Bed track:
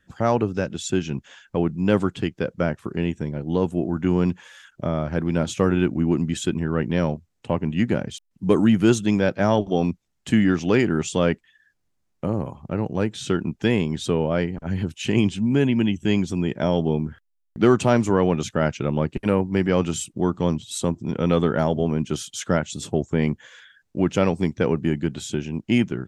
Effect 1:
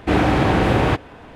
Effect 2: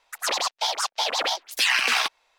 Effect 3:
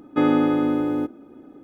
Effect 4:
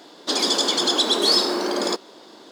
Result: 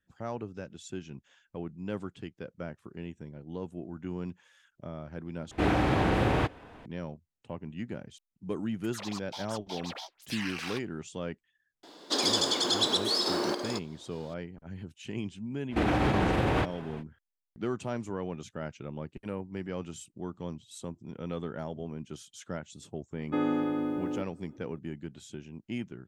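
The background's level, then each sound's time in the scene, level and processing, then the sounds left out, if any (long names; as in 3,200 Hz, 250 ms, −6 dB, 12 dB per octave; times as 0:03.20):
bed track −16.5 dB
0:05.51: overwrite with 1 −9 dB
0:08.71: mix in 2 −17 dB
0:11.83: mix in 4 −5.5 dB + sample-and-hold tremolo
0:15.69: mix in 1 −4.5 dB, fades 0.05 s + brickwall limiter −13.5 dBFS
0:23.16: mix in 3 −10 dB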